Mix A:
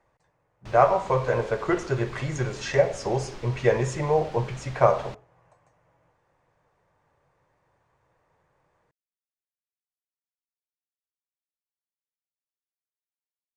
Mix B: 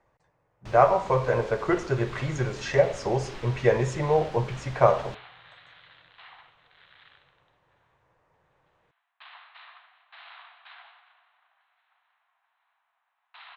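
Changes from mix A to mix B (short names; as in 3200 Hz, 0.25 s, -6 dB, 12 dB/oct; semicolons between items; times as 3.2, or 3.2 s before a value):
speech: add high shelf 8200 Hz -9.5 dB; second sound: unmuted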